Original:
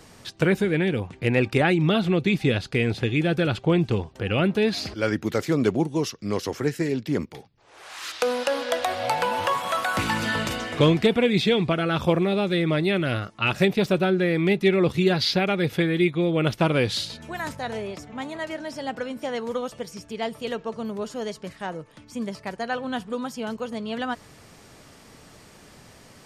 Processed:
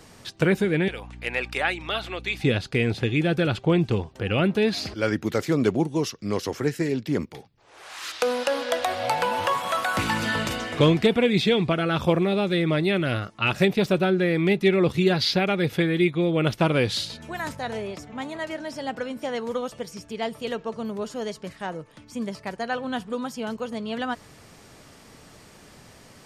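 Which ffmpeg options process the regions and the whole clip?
-filter_complex "[0:a]asettb=1/sr,asplit=3[s0][s1][s2];[s0]atrim=end=0.884[s3];[s1]atrim=start=0.88:end=2.41,asetpts=PTS-STARTPTS,afade=t=in:d=0.004:c=qsin,afade=t=out:st=1.526:d=0.004:c=qsin,highpass=780,aeval=exprs='val(0)+0.01*(sin(2*PI*60*n/s)+sin(2*PI*2*60*n/s)/2+sin(2*PI*3*60*n/s)/3+sin(2*PI*4*60*n/s)/4+sin(2*PI*5*60*n/s)/5)':c=same[s4];[s2]atrim=start=2.406[s5];[s3][s4]acrossfade=d=0.004:c1=hsin:c2=qsin[s6];[s6][s5]acrossfade=d=0.004:c1=qsin:c2=hsin"

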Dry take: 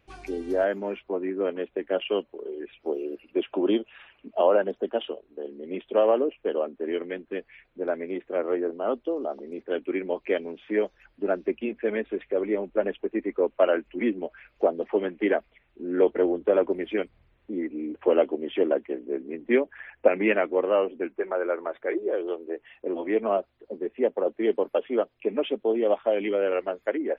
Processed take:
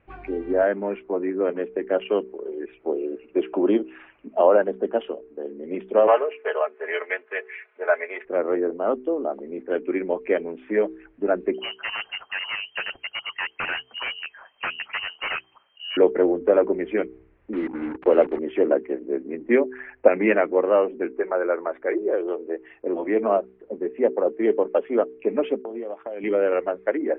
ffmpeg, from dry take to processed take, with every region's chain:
-filter_complex "[0:a]asettb=1/sr,asplit=3[s0][s1][s2];[s0]atrim=end=6.074[s3];[s1]atrim=start=6.07:end=8.25,asetpts=PTS-STARTPTS,afade=t=in:d=0.004:c=qsin,afade=t=out:st=2.176:d=0.004:c=qsin,highpass=f=540:w=0.5412,highpass=f=540:w=1.3066,equalizer=f=2100:t=o:w=2.1:g=10,aecho=1:1:4.7:0.67,atrim=end_sample=96138[s4];[s2]atrim=start=8.246[s5];[s3][s4]acrossfade=d=0.004:c1=hsin:c2=qsin[s6];[s6][s5]acrossfade=d=0.004:c1=qsin:c2=hsin,asettb=1/sr,asplit=3[s7][s8][s9];[s7]atrim=end=11.544[s10];[s8]atrim=start=11.54:end=15.97,asetpts=PTS-STARTPTS,afade=t=in:d=0.004:c=qsin,afade=t=out:st=4.426:d=0.004:c=qsin,lowshelf=f=170:g=9.5,aeval=exprs='0.0794*(abs(mod(val(0)/0.0794+3,4)-2)-1)':c=same,lowpass=f=2700:t=q:w=0.5098,lowpass=f=2700:t=q:w=0.6013,lowpass=f=2700:t=q:w=0.9,lowpass=f=2700:t=q:w=2.563,afreqshift=-3200[s11];[s9]atrim=start=15.966[s12];[s10][s11]acrossfade=d=0.004:c1=hsin:c2=qsin[s13];[s13][s12]acrossfade=d=0.004:c1=qsin:c2=hsin,asettb=1/sr,asplit=3[s14][s15][s16];[s14]atrim=end=17.534[s17];[s15]atrim=start=17.53:end=18.39,asetpts=PTS-STARTPTS,afade=t=in:d=0.004:c=qsin,afade=t=out:st=0.856:d=0.004:c=qsin,highpass=60,bandreject=f=60:t=h:w=6,bandreject=f=120:t=h:w=6,bandreject=f=180:t=h:w=6,bandreject=f=240:t=h:w=6,bandreject=f=300:t=h:w=6,acrusher=bits=5:mix=0:aa=0.5[s18];[s16]atrim=start=18.386[s19];[s17][s18]acrossfade=d=0.004:c1=hsin:c2=qsin[s20];[s20][s19]acrossfade=d=0.004:c1=qsin:c2=hsin,asettb=1/sr,asplit=3[s21][s22][s23];[s21]atrim=end=25.624[s24];[s22]atrim=start=25.62:end=26.24,asetpts=PTS-STARTPTS,afade=t=in:d=0.004:c=qsin,afade=t=out:st=0.616:d=0.004:c=qsin,agate=range=0.0224:threshold=0.00708:ratio=3:release=100:detection=peak,highpass=120,acompressor=threshold=0.0251:ratio=10:attack=3.2:release=140:knee=1:detection=peak[s25];[s23]atrim=start=26.236[s26];[s24][s25]acrossfade=d=0.004:c1=hsin:c2=qsin[s27];[s27][s26]acrossfade=d=0.004:c1=qsin:c2=hsin,lowpass=f=2300:w=0.5412,lowpass=f=2300:w=1.3066,bandreject=f=63.86:t=h:w=4,bandreject=f=127.72:t=h:w=4,bandreject=f=191.58:t=h:w=4,bandreject=f=255.44:t=h:w=4,bandreject=f=319.3:t=h:w=4,bandreject=f=383.16:t=h:w=4,bandreject=f=447.02:t=h:w=4,volume=1.58"

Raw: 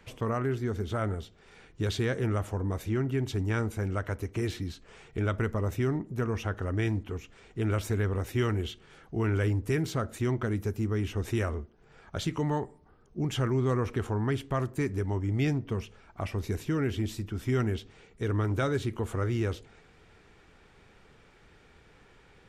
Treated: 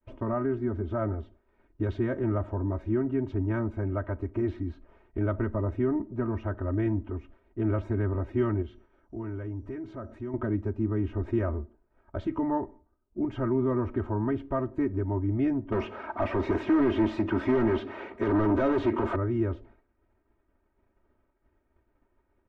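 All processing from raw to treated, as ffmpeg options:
-filter_complex "[0:a]asettb=1/sr,asplit=3[s0][s1][s2];[s0]atrim=end=8.624[s3];[s1]atrim=start=8.62:end=10.34,asetpts=PTS-STARTPTS,afade=t=in:d=0.004:c=qsin,afade=t=out:st=1.716:d=0.004:c=qsin,acompressor=threshold=0.00891:ratio=2:attack=3.2:release=140:knee=1:detection=peak,aeval=exprs='val(0)+0.00316*sin(2*PI*5800*n/s)':c=same[s4];[s2]atrim=start=10.336[s5];[s3][s4]acrossfade=d=0.004:c1=hsin:c2=qsin[s6];[s6][s5]acrossfade=d=0.004:c1=qsin:c2=hsin,asettb=1/sr,asplit=3[s7][s8][s9];[s7]atrim=end=15.724[s10];[s8]atrim=start=15.72:end=19.16,asetpts=PTS-STARTPTS,afade=t=in:d=0.004:c=qsin,afade=t=out:st=3.436:d=0.004:c=qsin,highpass=f=110:p=1,acrossover=split=470|3000[s11][s12][s13];[s12]acompressor=threshold=0.00708:ratio=2:attack=3.2:release=140:knee=2.83:detection=peak[s14];[s11][s14][s13]amix=inputs=3:normalize=0,asplit=2[s15][s16];[s16]highpass=f=720:p=1,volume=31.6,asoftclip=type=tanh:threshold=0.112[s17];[s15][s17]amix=inputs=2:normalize=0,lowpass=f=4800:p=1,volume=0.501[s18];[s9]atrim=start=19.156[s19];[s10][s18]acrossfade=d=0.004:c1=hsin:c2=qsin[s20];[s20][s19]acrossfade=d=0.004:c1=qsin:c2=hsin,lowpass=1100,agate=range=0.0224:threshold=0.00398:ratio=3:detection=peak,aecho=1:1:3.2:0.92"

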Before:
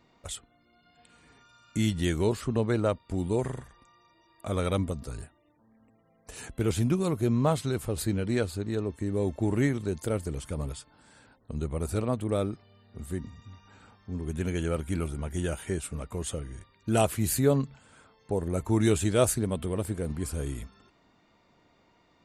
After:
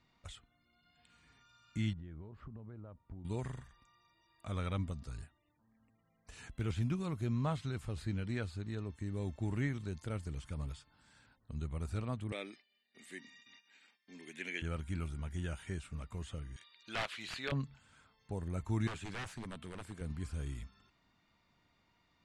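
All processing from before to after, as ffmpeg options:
-filter_complex "[0:a]asettb=1/sr,asplit=3[s0][s1][s2];[s0]atrim=end=1.934[s3];[s1]atrim=start=1.93:end=3.25,asetpts=PTS-STARTPTS,afade=t=in:d=0.004:c=qsin,afade=t=out:st=1.316:d=0.004:c=qsin,lowpass=1000,acompressor=threshold=0.0158:ratio=10:attack=3.2:release=140:knee=1:detection=peak[s4];[s2]atrim=start=3.246[s5];[s3][s4]acrossfade=d=0.004:c1=hsin:c2=qsin[s6];[s6][s5]acrossfade=d=0.004:c1=qsin:c2=hsin,asettb=1/sr,asplit=3[s7][s8][s9];[s7]atrim=end=12.324[s10];[s8]atrim=start=12.32:end=14.62,asetpts=PTS-STARTPTS,afade=t=in:d=0.004:c=qsin,afade=t=out:st=2.296:d=0.004:c=qsin,agate=range=0.0224:threshold=0.00316:ratio=3:release=100:detection=peak,highpass=f=270:w=0.5412,highpass=f=270:w=1.3066,highshelf=f=1600:t=q:w=3:g=7[s11];[s9]atrim=start=14.616[s12];[s10][s11]acrossfade=d=0.004:c1=hsin:c2=qsin[s13];[s13][s12]acrossfade=d=0.004:c1=qsin:c2=hsin,asettb=1/sr,asplit=3[s14][s15][s16];[s14]atrim=end=16.564[s17];[s15]atrim=start=16.56:end=17.52,asetpts=PTS-STARTPTS,afade=t=in:d=0.004:c=qsin,afade=t=out:st=0.956:d=0.004:c=qsin,highpass=480,equalizer=f=3700:t=o:w=1.5:g=14.5,aeval=exprs='(mod(5.96*val(0)+1,2)-1)/5.96':c=same[s18];[s16]atrim=start=17.516[s19];[s17][s18]acrossfade=d=0.004:c1=hsin:c2=qsin[s20];[s20][s19]acrossfade=d=0.004:c1=qsin:c2=hsin,asettb=1/sr,asplit=3[s21][s22][s23];[s21]atrim=end=18.874[s24];[s22]atrim=start=18.87:end=20.01,asetpts=PTS-STARTPTS,afade=t=in:d=0.004:c=qsin,afade=t=out:st=1.136:d=0.004:c=qsin,highpass=87,lowshelf=f=150:g=-10,aeval=exprs='0.0473*(abs(mod(val(0)/0.0473+3,4)-2)-1)':c=same[s25];[s23]atrim=start=20.006[s26];[s24][s25]acrossfade=d=0.004:c1=hsin:c2=qsin[s27];[s27][s26]acrossfade=d=0.004:c1=qsin:c2=hsin,lowpass=6700,acrossover=split=3000[s28][s29];[s29]acompressor=threshold=0.00316:ratio=4:attack=1:release=60[s30];[s28][s30]amix=inputs=2:normalize=0,equalizer=f=460:w=0.68:g=-11,volume=0.562"

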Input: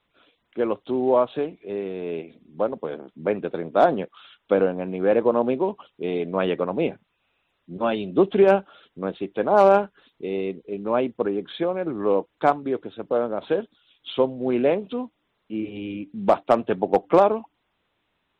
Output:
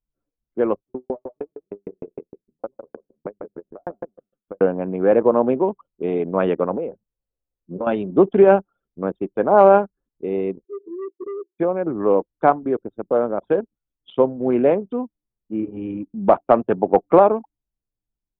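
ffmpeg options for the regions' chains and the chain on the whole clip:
-filter_complex "[0:a]asettb=1/sr,asplit=3[s0][s1][s2];[s0]atrim=end=0.794[s3];[s1]atrim=start=0.79:end=4.61,asetpts=PTS-STARTPTS,afade=t=in:d=0.004:c=qsin,afade=t=out:st=3.816:d=0.004:c=qsin,acompressor=threshold=0.0501:ratio=2:attack=3.2:release=140:knee=1:detection=peak,aecho=1:1:145|290|435:0.531|0.122|0.0281,atrim=end_sample=168462,aeval=exprs='val(0)*pow(10,-37*if(lt(mod(6.5*n/s,1),2*abs(6.5)/1000),1-mod(6.5*n/s,1)/(2*abs(6.5)/1000),(mod(6.5*n/s,1)-2*abs(6.5)/1000)/(1-2*abs(6.5)/1000))/20)':c=same[s4];[s2]atrim=start=4.606[s5];[s3][s4]acrossfade=d=0.004:c1=hsin:c2=qsin[s6];[s6][s5]acrossfade=d=0.004:c1=qsin:c2=hsin,asettb=1/sr,asplit=3[s7][s8][s9];[s7]atrim=end=6.714[s10];[s8]atrim=start=6.71:end=7.87,asetpts=PTS-STARTPTS,afade=t=in:d=0.004:c=qsin,afade=t=out:st=1.156:d=0.004:c=qsin,equalizer=f=500:t=o:w=0.48:g=9.5,acompressor=threshold=0.0562:ratio=16:attack=3.2:release=140:knee=1:detection=peak[s11];[s9]atrim=start=7.866[s12];[s10][s11]acrossfade=d=0.004:c1=hsin:c2=qsin[s13];[s13][s12]acrossfade=d=0.004:c1=qsin:c2=hsin,asettb=1/sr,asplit=3[s14][s15][s16];[s14]atrim=end=10.644[s17];[s15]atrim=start=10.64:end=11.59,asetpts=PTS-STARTPTS,afade=t=in:d=0.004:c=qsin,afade=t=out:st=0.946:d=0.004:c=qsin,asuperpass=centerf=370:order=8:qfactor=4.6,asoftclip=type=hard:threshold=0.0282[s18];[s16]atrim=start=11.586[s19];[s17][s18]acrossfade=d=0.004:c1=hsin:c2=qsin[s20];[s20][s19]acrossfade=d=0.004:c1=qsin:c2=hsin,anlmdn=10,lowpass=1700,volume=1.58"

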